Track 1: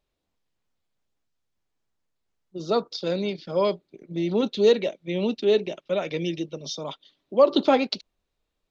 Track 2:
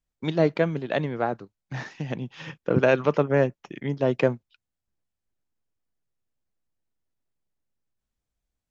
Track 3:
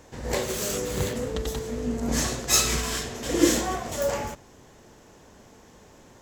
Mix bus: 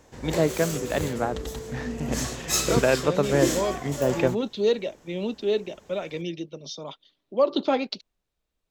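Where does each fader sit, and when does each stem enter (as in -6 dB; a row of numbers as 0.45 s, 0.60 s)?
-4.0 dB, -1.5 dB, -4.0 dB; 0.00 s, 0.00 s, 0.00 s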